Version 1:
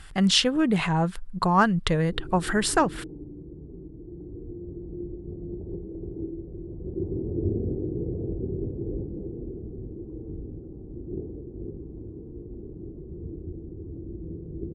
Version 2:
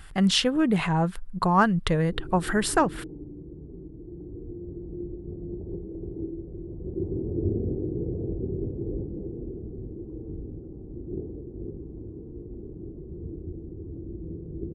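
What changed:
speech: add high shelf 4300 Hz -10 dB; master: remove air absorption 52 m

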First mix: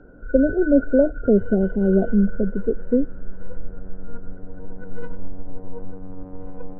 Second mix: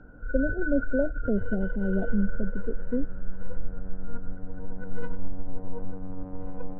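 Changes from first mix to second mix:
speech -8.5 dB; master: add bell 400 Hz -5.5 dB 0.52 oct

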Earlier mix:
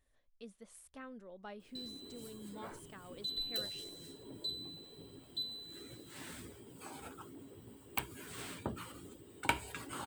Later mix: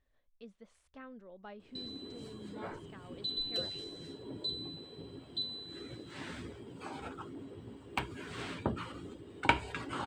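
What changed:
background +6.5 dB; master: add air absorption 130 m

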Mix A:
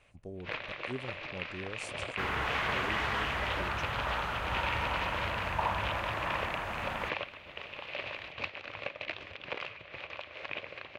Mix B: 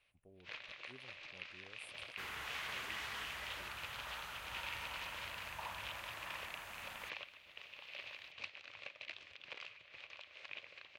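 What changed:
speech: add Butterworth band-stop 5200 Hz, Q 0.52; master: add pre-emphasis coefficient 0.9

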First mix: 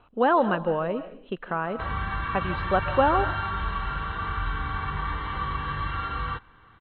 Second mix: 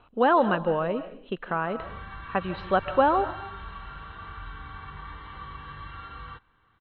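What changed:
background -11.5 dB; master: remove air absorption 100 m

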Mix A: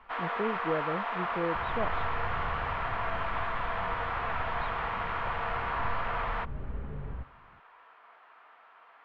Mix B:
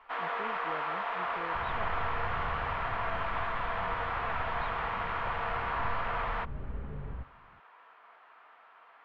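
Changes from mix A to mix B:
speech -12.0 dB; reverb: off

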